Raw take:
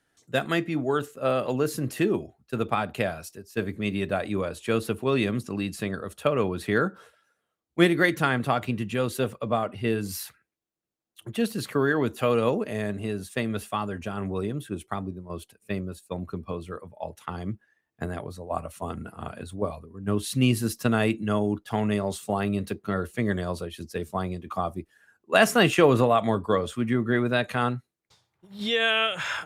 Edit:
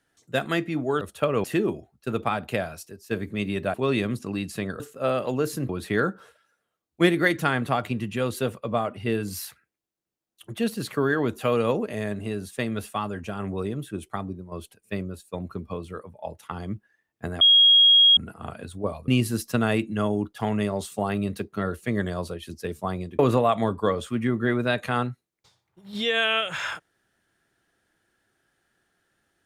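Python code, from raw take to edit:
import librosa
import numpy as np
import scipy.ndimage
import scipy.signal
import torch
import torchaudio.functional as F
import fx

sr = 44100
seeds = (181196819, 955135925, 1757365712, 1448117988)

y = fx.edit(x, sr, fx.swap(start_s=1.01, length_s=0.89, other_s=6.04, other_length_s=0.43),
    fx.cut(start_s=4.2, length_s=0.78),
    fx.bleep(start_s=18.19, length_s=0.76, hz=3280.0, db=-12.0),
    fx.cut(start_s=19.86, length_s=0.53),
    fx.cut(start_s=24.5, length_s=1.35), tone=tone)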